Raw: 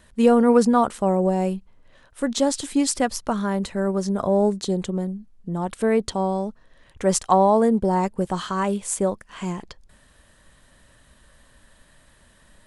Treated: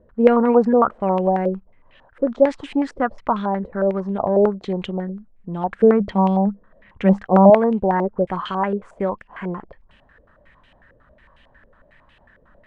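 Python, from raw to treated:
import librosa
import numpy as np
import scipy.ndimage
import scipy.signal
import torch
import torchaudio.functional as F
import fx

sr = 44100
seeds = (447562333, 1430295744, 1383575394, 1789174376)

y = fx.peak_eq(x, sr, hz=200.0, db=14.5, octaves=0.23, at=(5.72, 7.5))
y = fx.filter_held_lowpass(y, sr, hz=11.0, low_hz=490.0, high_hz=2800.0)
y = y * 10.0 ** (-1.0 / 20.0)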